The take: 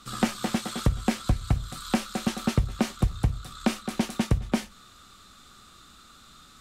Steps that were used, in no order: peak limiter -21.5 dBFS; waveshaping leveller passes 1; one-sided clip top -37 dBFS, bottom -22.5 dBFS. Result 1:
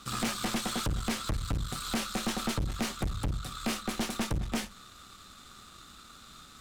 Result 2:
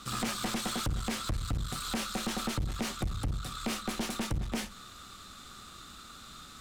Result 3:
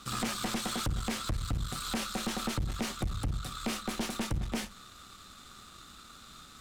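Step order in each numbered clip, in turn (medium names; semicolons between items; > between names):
waveshaping leveller > one-sided clip > peak limiter; peak limiter > waveshaping leveller > one-sided clip; waveshaping leveller > peak limiter > one-sided clip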